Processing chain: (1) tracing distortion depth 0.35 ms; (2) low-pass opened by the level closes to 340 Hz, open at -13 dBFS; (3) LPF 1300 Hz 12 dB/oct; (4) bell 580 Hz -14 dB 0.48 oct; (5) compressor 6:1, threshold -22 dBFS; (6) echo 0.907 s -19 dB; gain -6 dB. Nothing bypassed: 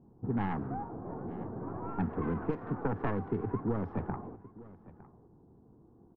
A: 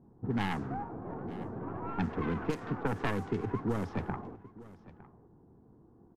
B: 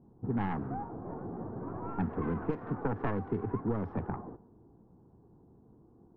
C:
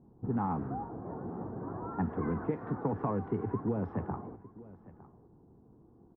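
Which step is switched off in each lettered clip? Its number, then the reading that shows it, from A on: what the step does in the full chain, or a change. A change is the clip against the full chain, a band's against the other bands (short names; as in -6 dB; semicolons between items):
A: 3, 2 kHz band +6.0 dB; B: 6, momentary loudness spread change -9 LU; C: 1, 2 kHz band -5.0 dB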